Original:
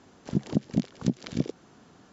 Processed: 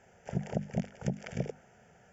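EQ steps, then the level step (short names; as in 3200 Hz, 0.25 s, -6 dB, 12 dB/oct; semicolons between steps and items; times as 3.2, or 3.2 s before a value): notches 50/100/150/200/250 Hz; fixed phaser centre 1100 Hz, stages 6; dynamic EQ 940 Hz, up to +4 dB, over -51 dBFS, Q 0.78; 0.0 dB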